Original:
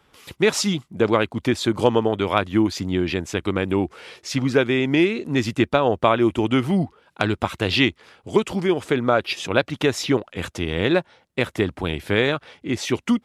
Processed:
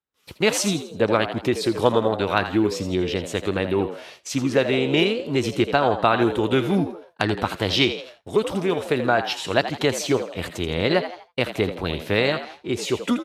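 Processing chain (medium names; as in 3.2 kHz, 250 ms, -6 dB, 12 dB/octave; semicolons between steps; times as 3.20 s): frequency-shifting echo 82 ms, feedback 41%, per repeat +81 Hz, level -11 dB; expander -37 dBFS; formant shift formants +2 st; trim -1 dB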